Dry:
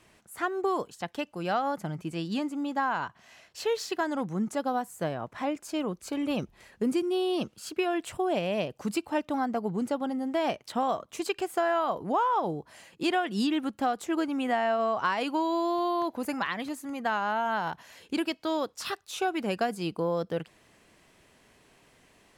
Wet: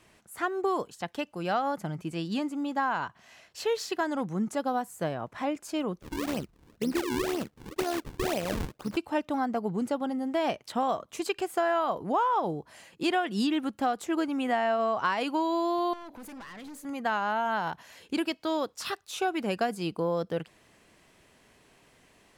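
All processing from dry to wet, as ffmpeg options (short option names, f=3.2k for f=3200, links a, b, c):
-filter_complex "[0:a]asettb=1/sr,asplit=3[a][b][c];[a]atrim=end=6.014[d];[b]atrim=start=6.01:end=8.97,asetpts=PTS-STARTPTS,afade=t=in:d=0.004:c=qsin,afade=t=out:st=2.956:d=0.004:c=qsin,acrusher=samples=40:mix=1:aa=0.000001:lfo=1:lforange=64:lforate=2,tremolo=f=74:d=0.519[e];[c]atrim=start=8.966[f];[d][e]acrossfade=d=0.004:c1=hsin:c2=qsin[g];[g][f]acrossfade=d=0.004:c1=qsin:c2=hsin,asettb=1/sr,asplit=3[h][i][j];[h]atrim=end=15.934[k];[i]atrim=start=15.93:end=16.85,asetpts=PTS-STARTPTS,afade=t=in:d=0.004:c=qsin,afade=t=out:st=0.916:d=0.004:c=qsin,bandreject=f=95.71:t=h:w=4,bandreject=f=191.42:t=h:w=4,bandreject=f=287.13:t=h:w=4,bandreject=f=382.84:t=h:w=4,bandreject=f=478.55:t=h:w=4,bandreject=f=574.26:t=h:w=4,acompressor=threshold=-32dB:ratio=16:attack=3.2:release=140:knee=1:detection=peak,aeval=exprs='(tanh(112*val(0)+0.25)-tanh(0.25))/112':c=same[l];[j]atrim=start=16.846[m];[k][l]acrossfade=d=0.004:c1=hsin:c2=qsin[n];[n][m]acrossfade=d=0.004:c1=qsin:c2=hsin"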